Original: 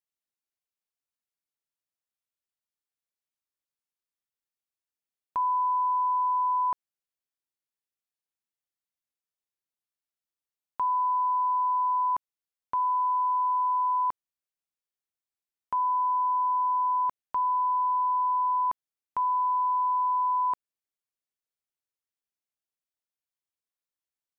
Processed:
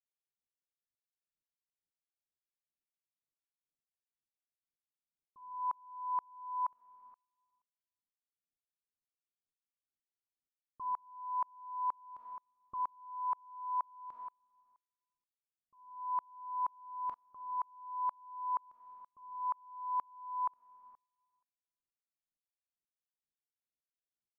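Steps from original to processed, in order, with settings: low-pass opened by the level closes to 470 Hz, open at -27.5 dBFS; de-hum 238.5 Hz, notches 38; low-pass opened by the level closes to 330 Hz, open at -24 dBFS; limiter -33.5 dBFS, peak gain reduction 11 dB; digital reverb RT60 1.2 s, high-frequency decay 0.9×, pre-delay 5 ms, DRR 7 dB; dB-ramp tremolo swelling 2.1 Hz, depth 36 dB; gain +5 dB

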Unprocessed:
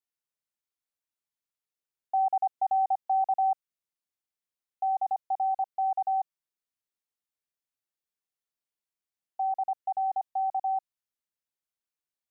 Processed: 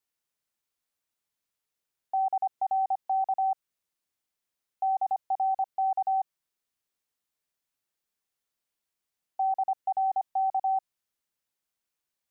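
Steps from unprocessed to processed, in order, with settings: limiter -28.5 dBFS, peak gain reduction 7.5 dB; gain +6 dB

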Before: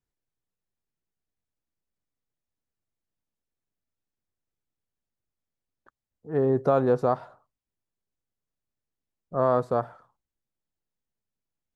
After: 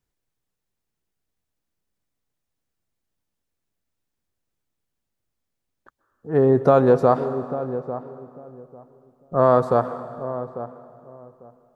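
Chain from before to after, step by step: darkening echo 0.847 s, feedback 20%, low-pass 920 Hz, level -11.5 dB; reverb RT60 2.6 s, pre-delay 0.118 s, DRR 12.5 dB; gain +6.5 dB

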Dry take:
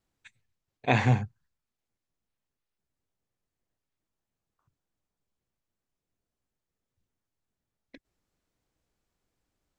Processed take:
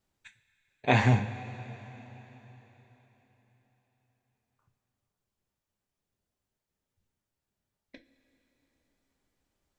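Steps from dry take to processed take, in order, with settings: two-slope reverb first 0.21 s, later 4.2 s, from -20 dB, DRR 4 dB

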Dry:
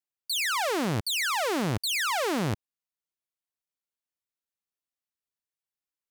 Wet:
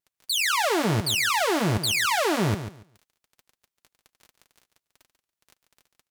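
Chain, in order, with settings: crackle 12/s -38 dBFS; vibrato 5.1 Hz 64 cents; notch comb 260 Hz; on a send: feedback echo 0.142 s, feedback 20%, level -10.5 dB; on the sum: gain +5 dB

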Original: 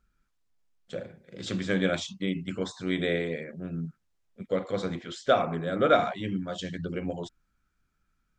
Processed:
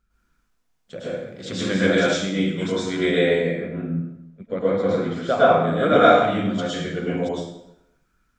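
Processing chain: 3.35–5.62 high shelf 4300 Hz -> 3100 Hz -12 dB; plate-style reverb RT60 0.85 s, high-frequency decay 0.8×, pre-delay 95 ms, DRR -9 dB

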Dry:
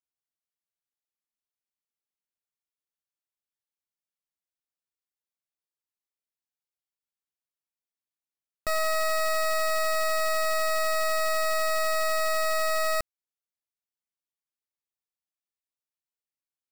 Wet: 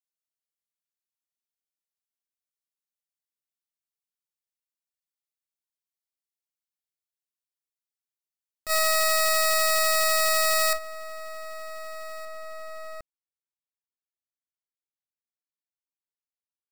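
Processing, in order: high shelf 2300 Hz +10.5 dB, from 10.73 s -3.5 dB, from 12.25 s -9.5 dB; gate -23 dBFS, range -11 dB

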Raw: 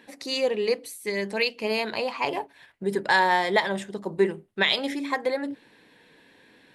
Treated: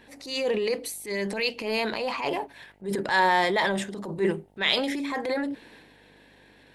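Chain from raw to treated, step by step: transient shaper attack -9 dB, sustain +6 dB; buzz 50 Hz, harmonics 18, -62 dBFS -2 dB/oct

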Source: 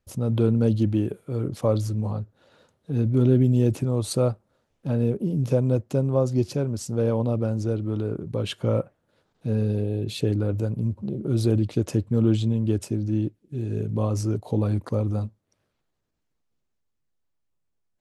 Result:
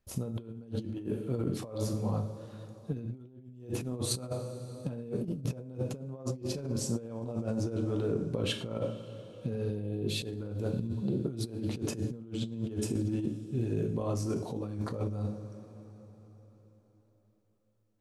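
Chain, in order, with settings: two-slope reverb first 0.53 s, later 4.4 s, from -18 dB, DRR 4 dB; negative-ratio compressor -27 dBFS, ratio -0.5; gain -6.5 dB

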